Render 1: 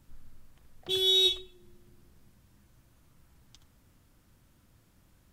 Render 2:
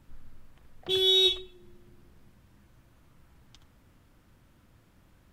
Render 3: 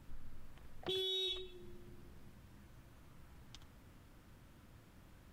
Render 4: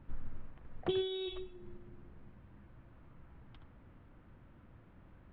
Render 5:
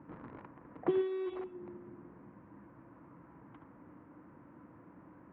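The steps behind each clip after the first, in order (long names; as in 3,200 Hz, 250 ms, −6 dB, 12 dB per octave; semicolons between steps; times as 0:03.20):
bass and treble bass −2 dB, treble −8 dB; level +4.5 dB
brickwall limiter −23.5 dBFS, peak gain reduction 10.5 dB; downward compressor 2.5 to 1, threshold −40 dBFS, peak gain reduction 8.5 dB
Gaussian smoothing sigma 3.4 samples; expander for the loud parts 1.5 to 1, over −53 dBFS; level +9.5 dB
in parallel at −7 dB: wrap-around overflow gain 38 dB; on the sum: loudspeaker in its box 160–2,100 Hz, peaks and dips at 170 Hz +3 dB, 300 Hz +10 dB, 490 Hz +3 dB, 1,000 Hz +8 dB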